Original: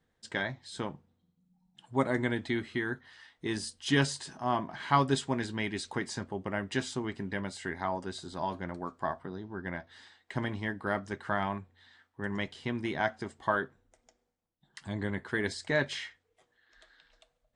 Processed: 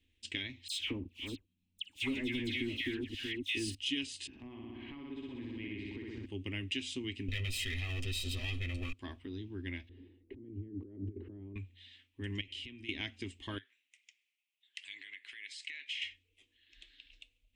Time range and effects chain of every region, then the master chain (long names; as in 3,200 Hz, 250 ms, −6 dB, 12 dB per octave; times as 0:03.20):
0:00.68–0:03.75: delay that plays each chunk backwards 336 ms, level −10 dB + leveller curve on the samples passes 2 + all-pass dispersion lows, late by 115 ms, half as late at 1,700 Hz
0:04.27–0:06.26: low-pass filter 1,300 Hz + flutter between parallel walls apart 10.7 metres, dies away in 1.4 s + downward compressor 8 to 1, threshold −36 dBFS
0:07.28–0:08.93: lower of the sound and its delayed copy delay 8 ms + comb filter 1.6 ms, depth 87% + envelope flattener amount 70%
0:09.89–0:11.56: low-pass with resonance 390 Hz, resonance Q 2.7 + compressor whose output falls as the input rises −44 dBFS
0:12.41–0:12.89: hum removal 174.4 Hz, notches 18 + downward compressor 8 to 1, threshold −45 dBFS
0:13.58–0:16.02: high-pass filter 1,400 Hz + parametric band 2,000 Hz +8 dB 0.71 octaves + downward compressor 4 to 1, threshold −45 dBFS
whole clip: drawn EQ curve 100 Hz 0 dB, 150 Hz −25 dB, 280 Hz −1 dB, 690 Hz −28 dB, 1,000 Hz −24 dB, 1,500 Hz −23 dB, 2,600 Hz +10 dB, 4,500 Hz −6 dB; downward compressor 4 to 1, threshold −40 dBFS; level +5 dB